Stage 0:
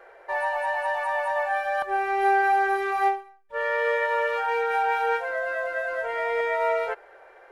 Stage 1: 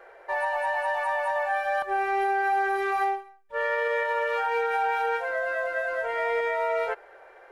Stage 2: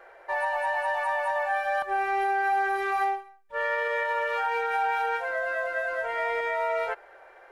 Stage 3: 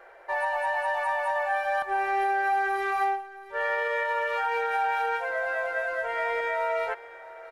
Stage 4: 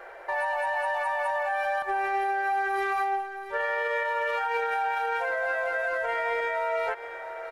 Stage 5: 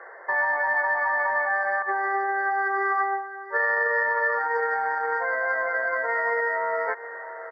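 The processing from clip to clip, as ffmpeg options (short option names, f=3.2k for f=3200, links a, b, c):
-af "alimiter=limit=-18dB:level=0:latency=1:release=68"
-af "equalizer=f=440:w=3.1:g=-5"
-af "aecho=1:1:673:0.133"
-af "alimiter=level_in=3dB:limit=-24dB:level=0:latency=1:release=103,volume=-3dB,volume=6.5dB"
-af "aeval=exprs='0.1*(cos(1*acos(clip(val(0)/0.1,-1,1)))-cos(1*PI/2))+0.0112*(cos(3*acos(clip(val(0)/0.1,-1,1)))-cos(3*PI/2))':c=same,highpass=f=240:w=0.5412,highpass=f=240:w=1.3066,equalizer=f=450:t=q:w=4:g=5,equalizer=f=1.1k:t=q:w=4:g=9,equalizer=f=1.8k:t=q:w=4:g=9,equalizer=f=2.7k:t=q:w=4:g=3,lowpass=f=3.8k:w=0.5412,lowpass=f=3.8k:w=1.3066,afftfilt=real='re*eq(mod(floor(b*sr/1024/2200),2),0)':imag='im*eq(mod(floor(b*sr/1024/2200),2),0)':win_size=1024:overlap=0.75"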